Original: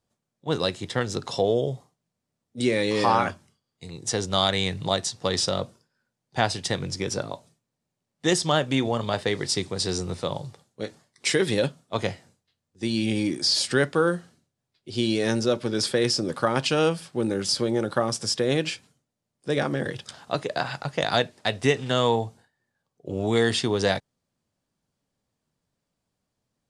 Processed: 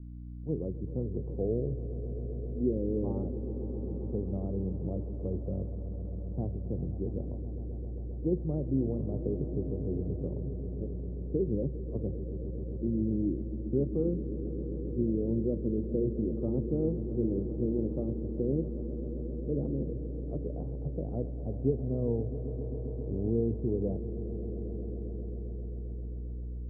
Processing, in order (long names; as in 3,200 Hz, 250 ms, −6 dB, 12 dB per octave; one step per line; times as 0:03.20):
high-pass filter 40 Hz 24 dB per octave
mains hum 60 Hz, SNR 12 dB
inverse Chebyshev low-pass filter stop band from 1,900 Hz, stop band 70 dB
on a send: echo that builds up and dies away 133 ms, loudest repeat 5, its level −15 dB
on the sum: level −4.5 dB
AAC 32 kbit/s 22,050 Hz